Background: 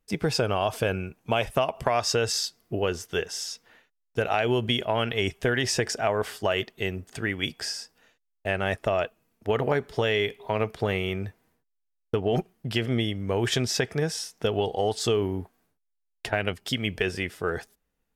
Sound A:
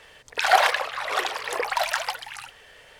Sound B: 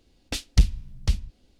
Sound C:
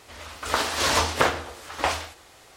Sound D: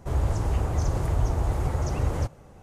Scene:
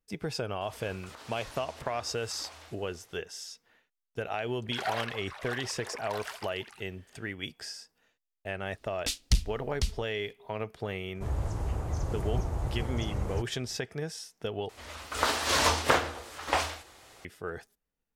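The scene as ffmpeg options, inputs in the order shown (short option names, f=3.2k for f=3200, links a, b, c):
-filter_complex "[3:a]asplit=2[a][b];[0:a]volume=-9dB[c];[a]acompressor=threshold=-34dB:ratio=6:attack=3.2:release=140:knee=1:detection=peak[d];[2:a]highshelf=f=2.4k:g=10[e];[c]asplit=2[f][g];[f]atrim=end=14.694[h];[b]atrim=end=2.56,asetpts=PTS-STARTPTS,volume=-3dB[i];[g]atrim=start=17.246[j];[d]atrim=end=2.56,asetpts=PTS-STARTPTS,volume=-11.5dB,afade=t=in:d=0.004:c=hsin,afade=t=out:st=2.556:d=0.004:c=hsin,adelay=610[k];[1:a]atrim=end=2.99,asetpts=PTS-STARTPTS,volume=-15.5dB,afade=t=in:d=0.004:c=hsin,afade=t=out:st=2.986:d=0.004:c=hsin,adelay=4340[l];[e]atrim=end=1.59,asetpts=PTS-STARTPTS,volume=-7.5dB,afade=t=in:d=0.004:c=hsin,afade=t=out:st=1.586:d=0.004:c=hsin,adelay=385434S[m];[4:a]atrim=end=2.62,asetpts=PTS-STARTPTS,volume=-7dB,afade=t=in:d=0.004:c=hsin,afade=t=out:st=2.616:d=0.004:c=hsin,adelay=11150[n];[h][i]acrossfade=d=0.004:c1=hsin:c2=hsin[o];[o][j]acrossfade=d=0.004:c1=hsin:c2=hsin[p];[p][k][l][m][n]amix=inputs=5:normalize=0"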